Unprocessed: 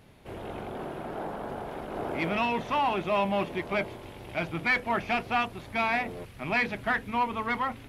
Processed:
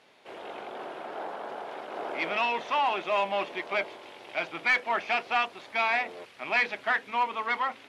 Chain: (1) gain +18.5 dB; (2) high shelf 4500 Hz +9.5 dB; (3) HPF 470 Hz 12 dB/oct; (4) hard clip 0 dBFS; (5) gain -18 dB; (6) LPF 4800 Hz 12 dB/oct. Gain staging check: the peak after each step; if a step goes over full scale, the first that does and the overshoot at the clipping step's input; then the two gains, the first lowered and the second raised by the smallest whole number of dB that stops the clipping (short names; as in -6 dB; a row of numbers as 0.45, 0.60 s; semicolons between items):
+2.5, +4.0, +4.0, 0.0, -18.0, -17.5 dBFS; step 1, 4.0 dB; step 1 +14.5 dB, step 5 -14 dB